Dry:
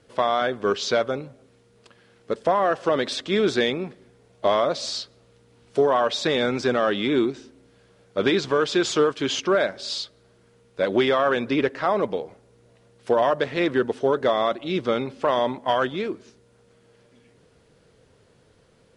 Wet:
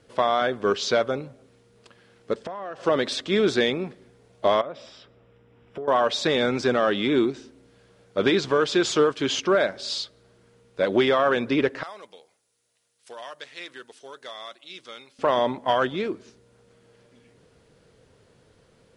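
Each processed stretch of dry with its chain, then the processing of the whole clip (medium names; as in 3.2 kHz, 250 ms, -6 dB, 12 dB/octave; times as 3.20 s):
2.34–2.83 s: low-pass 8.1 kHz + compression 12:1, threshold -30 dBFS
4.61–5.88 s: compression 4:1, threshold -33 dBFS + Savitzky-Golay filter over 25 samples
11.83–15.19 s: pre-emphasis filter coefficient 0.97 + de-hum 160.3 Hz, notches 2
whole clip: none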